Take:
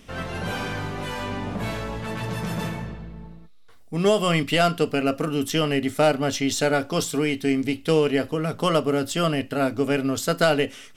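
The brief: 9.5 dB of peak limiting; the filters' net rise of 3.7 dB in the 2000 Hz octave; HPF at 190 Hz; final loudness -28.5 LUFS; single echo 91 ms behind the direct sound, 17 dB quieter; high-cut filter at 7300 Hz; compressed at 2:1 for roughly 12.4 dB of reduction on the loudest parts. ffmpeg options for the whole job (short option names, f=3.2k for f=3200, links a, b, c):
-af "highpass=190,lowpass=7.3k,equalizer=f=2k:t=o:g=5,acompressor=threshold=-37dB:ratio=2,alimiter=level_in=1dB:limit=-24dB:level=0:latency=1,volume=-1dB,aecho=1:1:91:0.141,volume=7.5dB"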